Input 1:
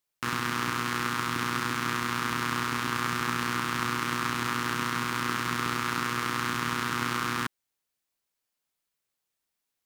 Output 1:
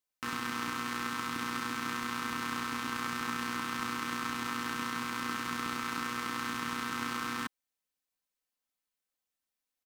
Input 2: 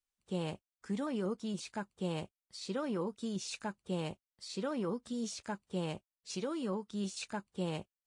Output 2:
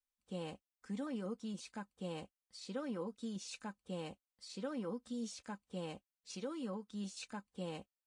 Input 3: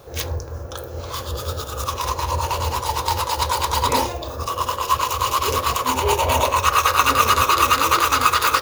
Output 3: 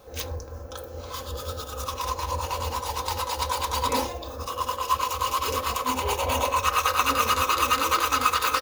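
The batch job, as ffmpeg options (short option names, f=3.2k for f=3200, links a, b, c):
-af "aecho=1:1:3.9:0.52,volume=-7dB"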